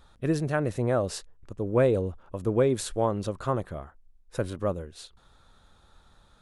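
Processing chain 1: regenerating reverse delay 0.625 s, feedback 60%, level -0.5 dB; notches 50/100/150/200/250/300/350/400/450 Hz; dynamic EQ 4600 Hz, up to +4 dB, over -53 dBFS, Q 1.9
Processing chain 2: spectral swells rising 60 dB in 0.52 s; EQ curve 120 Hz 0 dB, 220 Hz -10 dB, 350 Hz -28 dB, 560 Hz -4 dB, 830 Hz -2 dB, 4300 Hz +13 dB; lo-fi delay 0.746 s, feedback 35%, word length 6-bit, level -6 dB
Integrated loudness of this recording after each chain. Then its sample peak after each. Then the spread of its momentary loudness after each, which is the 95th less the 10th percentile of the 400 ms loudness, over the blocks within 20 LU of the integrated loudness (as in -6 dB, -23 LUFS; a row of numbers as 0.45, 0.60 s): -26.5, -27.0 LUFS; -8.5, -5.0 dBFS; 10, 17 LU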